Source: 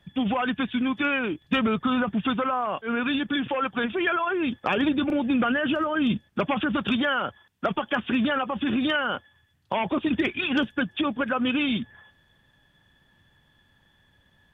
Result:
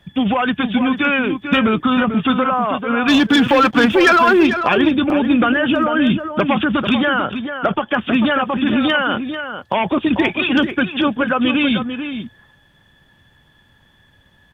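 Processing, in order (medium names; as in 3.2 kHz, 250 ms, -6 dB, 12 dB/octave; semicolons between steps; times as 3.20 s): 3.08–4.47 s: waveshaping leveller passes 2; 7.01–8.01 s: low-pass 3 kHz 6 dB/octave; echo from a far wall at 76 m, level -8 dB; trim +8 dB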